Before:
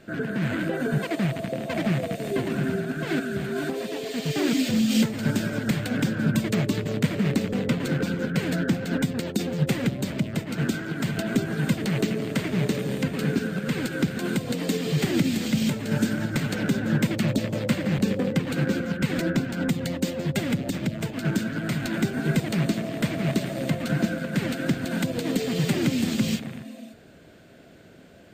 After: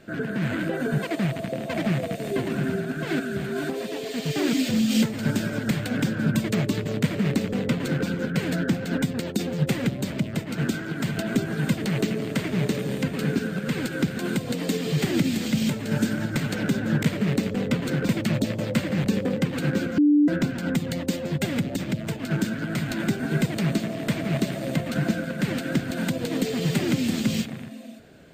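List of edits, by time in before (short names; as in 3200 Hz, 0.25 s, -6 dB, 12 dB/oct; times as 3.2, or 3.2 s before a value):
7.01–8.07 copy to 17.03
18.92–19.22 bleep 294 Hz -14 dBFS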